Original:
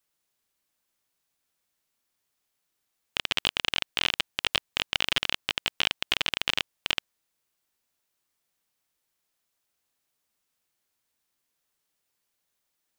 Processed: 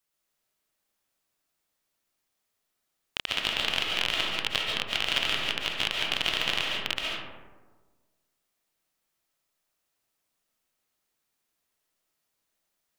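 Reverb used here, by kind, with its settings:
comb and all-pass reverb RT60 1.4 s, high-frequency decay 0.35×, pre-delay 100 ms, DRR −2 dB
level −3 dB

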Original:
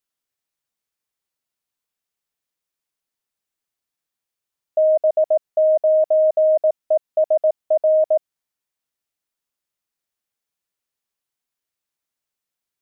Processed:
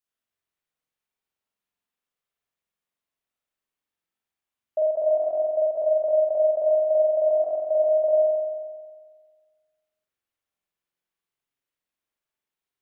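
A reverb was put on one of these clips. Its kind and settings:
spring reverb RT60 1.6 s, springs 45 ms, chirp 50 ms, DRR −6 dB
level −7.5 dB

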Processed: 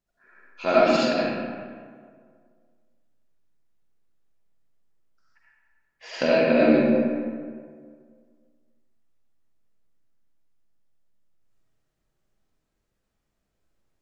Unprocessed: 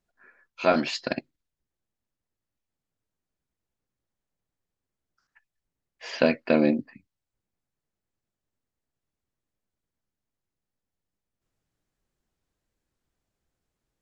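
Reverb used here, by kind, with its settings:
comb and all-pass reverb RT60 1.9 s, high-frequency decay 0.55×, pre-delay 30 ms, DRR −8 dB
level −4.5 dB

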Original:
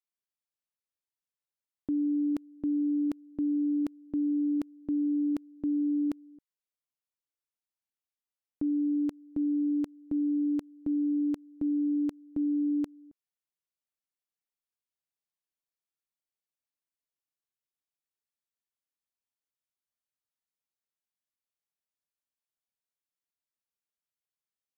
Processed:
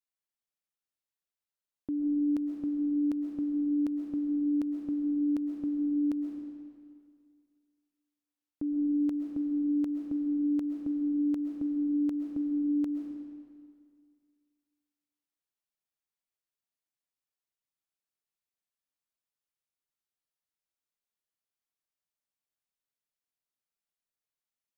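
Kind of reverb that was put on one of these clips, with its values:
comb and all-pass reverb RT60 2.1 s, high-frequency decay 0.85×, pre-delay 90 ms, DRR 3 dB
level −3 dB

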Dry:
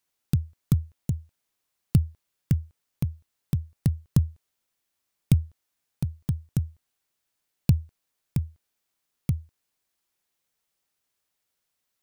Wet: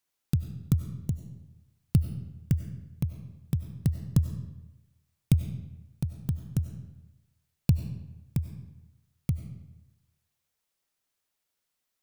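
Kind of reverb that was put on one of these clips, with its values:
comb and all-pass reverb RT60 1 s, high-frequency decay 0.75×, pre-delay 55 ms, DRR 8.5 dB
level −2.5 dB

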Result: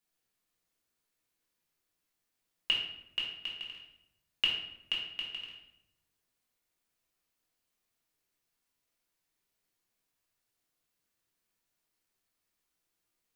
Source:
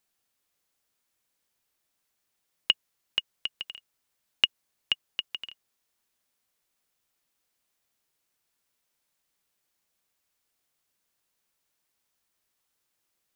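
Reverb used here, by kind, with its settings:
rectangular room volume 230 cubic metres, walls mixed, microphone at 1.8 metres
level −9.5 dB

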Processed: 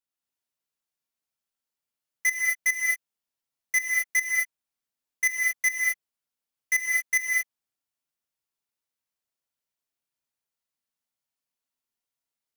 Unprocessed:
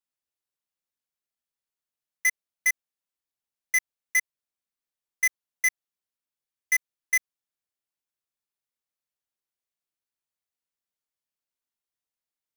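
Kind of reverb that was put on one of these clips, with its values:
reverb whose tail is shaped and stops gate 260 ms rising, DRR −1.5 dB
level −2 dB

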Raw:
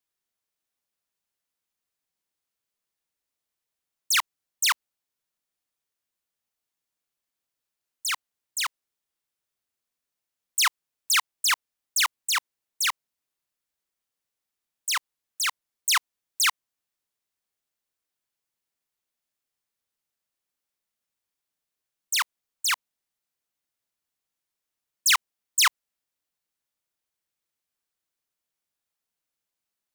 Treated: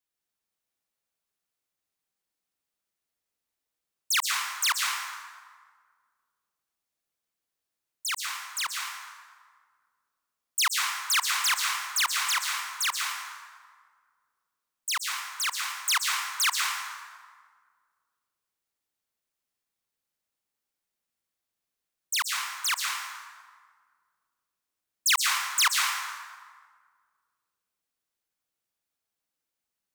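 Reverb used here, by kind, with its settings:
dense smooth reverb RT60 1.7 s, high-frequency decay 0.6×, pre-delay 110 ms, DRR 0 dB
level −3 dB

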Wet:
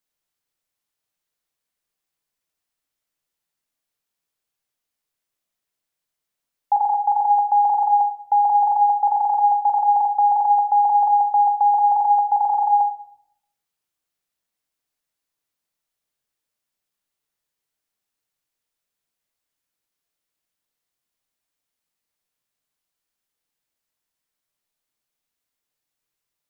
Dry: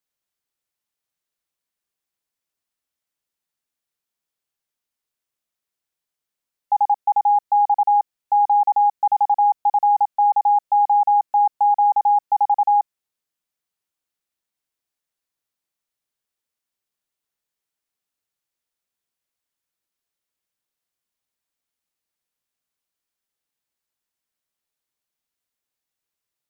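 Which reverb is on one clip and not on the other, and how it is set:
rectangular room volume 180 cubic metres, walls mixed, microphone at 0.44 metres
level +1.5 dB

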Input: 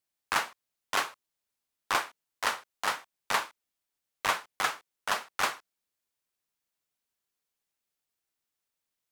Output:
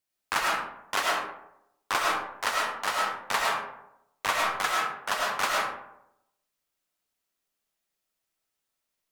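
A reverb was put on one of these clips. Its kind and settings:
comb and all-pass reverb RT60 0.83 s, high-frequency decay 0.45×, pre-delay 65 ms, DRR −2.5 dB

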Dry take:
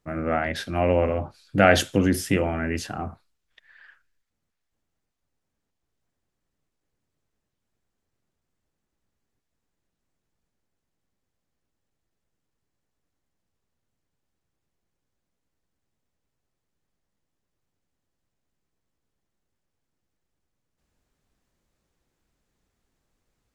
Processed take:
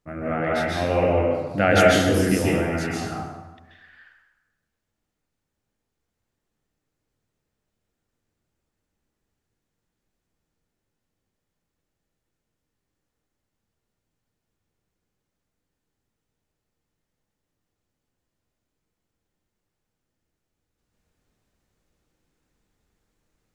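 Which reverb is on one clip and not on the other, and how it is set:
dense smooth reverb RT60 1.1 s, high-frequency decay 0.75×, pre-delay 120 ms, DRR −4.5 dB
level −3.5 dB

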